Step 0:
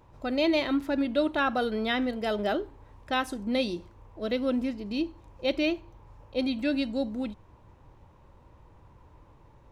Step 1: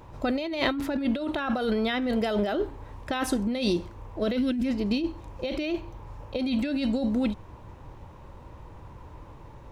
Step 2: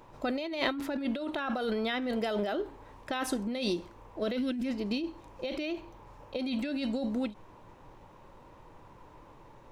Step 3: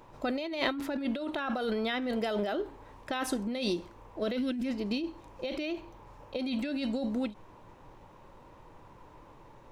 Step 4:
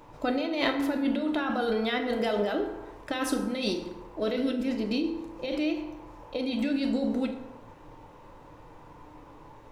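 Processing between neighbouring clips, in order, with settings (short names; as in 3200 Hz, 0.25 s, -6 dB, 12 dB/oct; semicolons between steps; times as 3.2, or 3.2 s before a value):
spectral gain 4.38–4.65, 380–1400 Hz -12 dB; negative-ratio compressor -32 dBFS, ratio -1; gain +5.5 dB
bell 65 Hz -14.5 dB 1.9 oct; ending taper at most 230 dB/s; gain -3.5 dB
nothing audible
FDN reverb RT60 1.2 s, low-frequency decay 0.75×, high-frequency decay 0.5×, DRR 3.5 dB; gain +2 dB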